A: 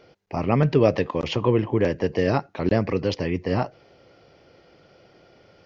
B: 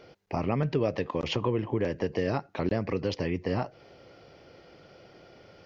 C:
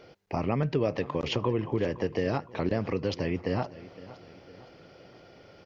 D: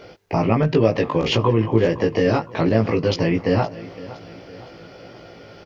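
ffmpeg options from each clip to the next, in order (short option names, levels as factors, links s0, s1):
-af "acompressor=threshold=0.0355:ratio=2.5,volume=1.12"
-af "aecho=1:1:514|1028|1542|2056:0.126|0.0604|0.029|0.0139"
-filter_complex "[0:a]asplit=2[s0][s1];[s1]asoftclip=type=tanh:threshold=0.075,volume=0.299[s2];[s0][s2]amix=inputs=2:normalize=0,asplit=2[s3][s4];[s4]adelay=18,volume=0.75[s5];[s3][s5]amix=inputs=2:normalize=0,volume=2.11"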